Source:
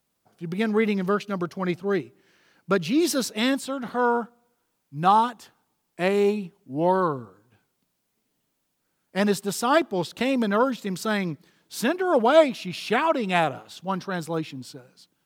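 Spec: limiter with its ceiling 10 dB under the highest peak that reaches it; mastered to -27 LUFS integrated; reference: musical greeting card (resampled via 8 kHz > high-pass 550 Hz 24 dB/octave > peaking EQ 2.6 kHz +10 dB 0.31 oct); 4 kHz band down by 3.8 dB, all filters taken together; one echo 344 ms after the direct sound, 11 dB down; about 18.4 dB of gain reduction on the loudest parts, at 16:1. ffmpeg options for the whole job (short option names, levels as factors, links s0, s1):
-af "equalizer=f=4000:t=o:g=-8.5,acompressor=threshold=0.0355:ratio=16,alimiter=level_in=1.58:limit=0.0631:level=0:latency=1,volume=0.631,aecho=1:1:344:0.282,aresample=8000,aresample=44100,highpass=f=550:w=0.5412,highpass=f=550:w=1.3066,equalizer=f=2600:t=o:w=0.31:g=10,volume=5.31"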